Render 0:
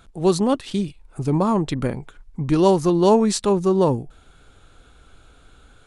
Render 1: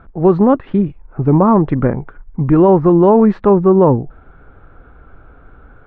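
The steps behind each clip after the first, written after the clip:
low-pass filter 1,700 Hz 24 dB per octave
boost into a limiter +10 dB
level −1 dB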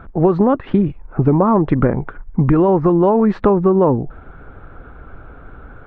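harmonic and percussive parts rebalanced percussive +4 dB
downward compressor 6 to 1, threshold −13 dBFS, peak gain reduction 9 dB
level +3 dB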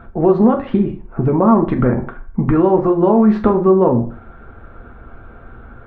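convolution reverb RT60 0.45 s, pre-delay 4 ms, DRR 2.5 dB
level −2 dB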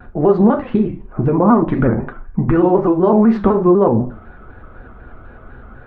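pitch modulation by a square or saw wave square 4 Hz, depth 100 cents

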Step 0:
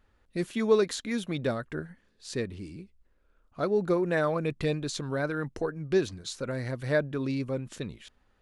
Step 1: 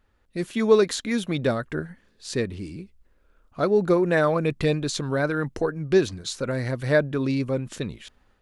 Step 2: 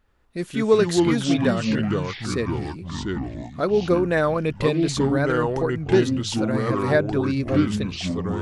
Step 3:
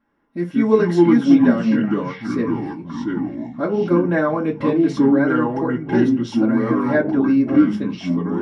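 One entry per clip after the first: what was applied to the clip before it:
automatic gain control gain up to 6 dB
delay with pitch and tempo change per echo 84 ms, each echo −4 semitones, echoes 3
convolution reverb RT60 0.35 s, pre-delay 3 ms, DRR −7.5 dB; level −14.5 dB

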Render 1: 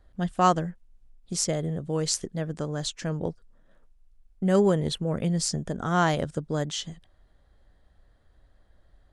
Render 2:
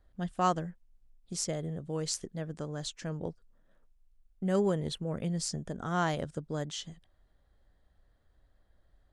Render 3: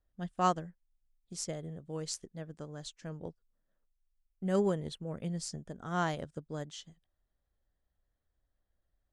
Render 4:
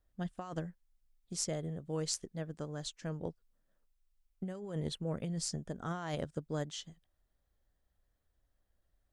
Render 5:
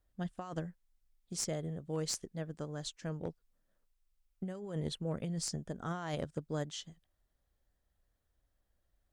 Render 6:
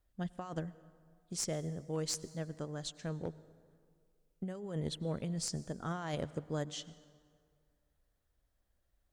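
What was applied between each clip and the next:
de-essing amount 30%; level −7 dB
expander for the loud parts 1.5 to 1, over −52 dBFS
compressor whose output falls as the input rises −37 dBFS, ratio −1
asymmetric clip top −31 dBFS
convolution reverb RT60 2.1 s, pre-delay 88 ms, DRR 18 dB

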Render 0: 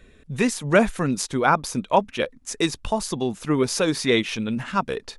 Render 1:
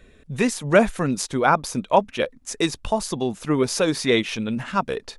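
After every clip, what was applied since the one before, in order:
parametric band 620 Hz +2.5 dB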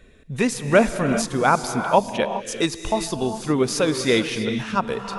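reverb whose tail is shaped and stops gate 430 ms rising, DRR 7.5 dB

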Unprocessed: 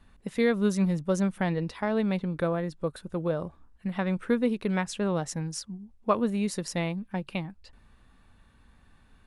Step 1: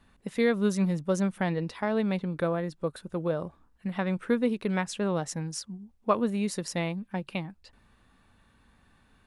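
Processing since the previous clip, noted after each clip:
low-shelf EQ 66 Hz −9.5 dB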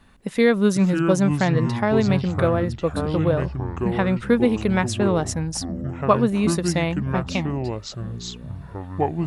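delay with pitch and tempo change per echo 387 ms, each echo −6 semitones, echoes 3, each echo −6 dB
level +7.5 dB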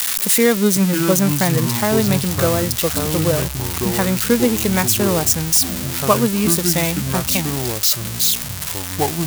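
spike at every zero crossing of −10 dBFS
level +2 dB

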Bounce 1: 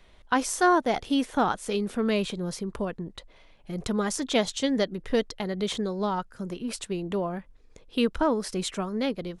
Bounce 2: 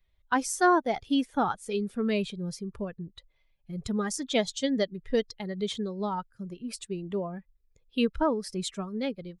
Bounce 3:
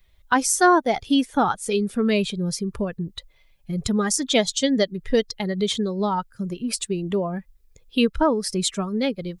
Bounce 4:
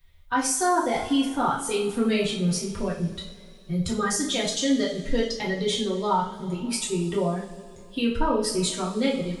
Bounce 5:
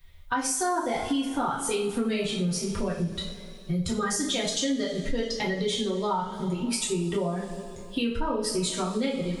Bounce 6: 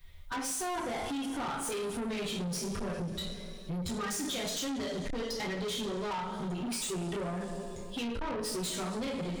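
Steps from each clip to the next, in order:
spectral dynamics exaggerated over time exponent 1.5
high-shelf EQ 4,400 Hz +5.5 dB; in parallel at +2.5 dB: downward compressor, threshold −36 dBFS, peak gain reduction 17 dB; on the sum: level +4 dB
brickwall limiter −15 dBFS, peak gain reduction 9 dB; coupled-rooms reverb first 0.43 s, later 2.9 s, from −20 dB, DRR −5.5 dB; level −5.5 dB
downward compressor 4 to 1, threshold −30 dBFS, peak gain reduction 11 dB; level +4.5 dB
soft clipping −32.5 dBFS, distortion −8 dB

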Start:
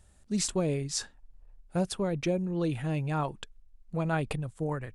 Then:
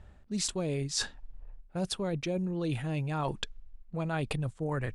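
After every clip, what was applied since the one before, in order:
low-pass that shuts in the quiet parts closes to 2,300 Hz, open at −29 dBFS
dynamic equaliser 3,900 Hz, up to +5 dB, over −49 dBFS, Q 1.2
reversed playback
downward compressor 6 to 1, threshold −38 dBFS, peak gain reduction 14 dB
reversed playback
level +8 dB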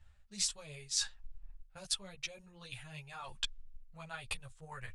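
guitar amp tone stack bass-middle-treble 10-0-10
transient designer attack +6 dB, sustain +1 dB
string-ensemble chorus

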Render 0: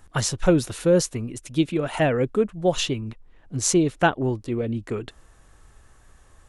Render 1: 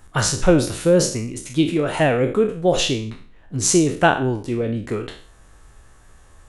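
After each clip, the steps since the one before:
peak hold with a decay on every bin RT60 0.45 s
level +2.5 dB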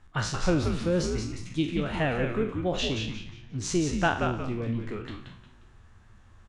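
low-pass filter 4,400 Hz 12 dB per octave
parametric band 510 Hz −5.5 dB 1.2 octaves
on a send: echo with shifted repeats 178 ms, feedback 34%, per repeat −120 Hz, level −5 dB
on the sum: level −7.5 dB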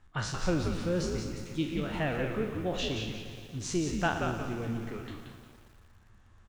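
feedback echo at a low word length 118 ms, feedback 80%, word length 8 bits, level −12.5 dB
level −4.5 dB

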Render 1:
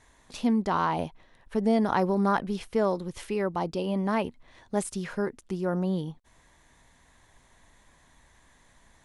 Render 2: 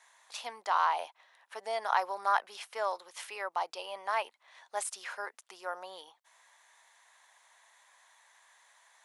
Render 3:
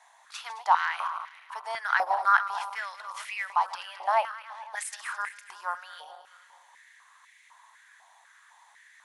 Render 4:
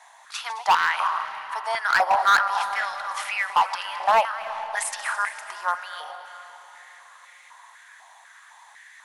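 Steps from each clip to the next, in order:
high-pass filter 720 Hz 24 dB per octave
feedback delay that plays each chunk backwards 108 ms, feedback 71%, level −12.5 dB; high-pass on a step sequencer 4 Hz 750–2,100 Hz
gain into a clipping stage and back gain 20.5 dB; convolution reverb RT60 3.8 s, pre-delay 216 ms, DRR 12.5 dB; level +7.5 dB

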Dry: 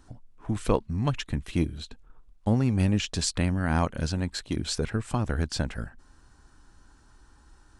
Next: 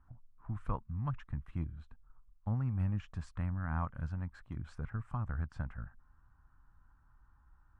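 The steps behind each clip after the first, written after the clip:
drawn EQ curve 130 Hz 0 dB, 410 Hz −17 dB, 1,200 Hz +1 dB, 4,200 Hz −27 dB
level −7.5 dB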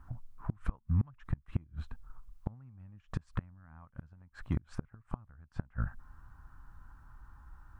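gate with flip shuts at −30 dBFS, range −30 dB
level +11 dB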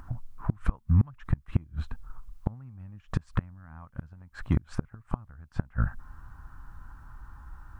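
upward compression, threshold −53 dBFS
level +7.5 dB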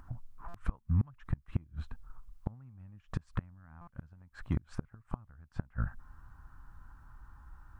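buffer that repeats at 0:00.48/0:03.81, samples 256, times 10
level −7 dB

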